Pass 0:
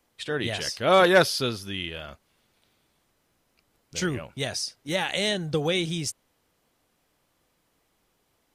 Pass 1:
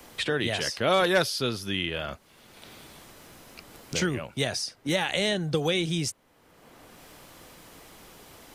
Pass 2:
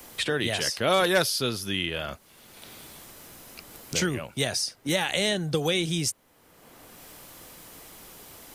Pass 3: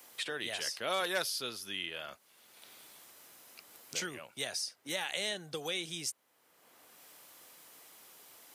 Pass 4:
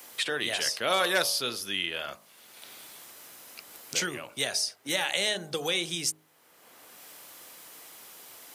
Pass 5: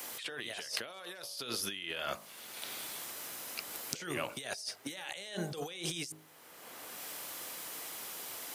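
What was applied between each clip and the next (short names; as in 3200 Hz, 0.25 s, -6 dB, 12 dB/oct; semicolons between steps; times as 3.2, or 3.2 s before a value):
three-band squash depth 70%
high shelf 7900 Hz +10.5 dB
HPF 660 Hz 6 dB/oct; gain -8.5 dB
de-hum 52.2 Hz, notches 24; gain +8 dB
negative-ratio compressor -39 dBFS, ratio -1; gain -2 dB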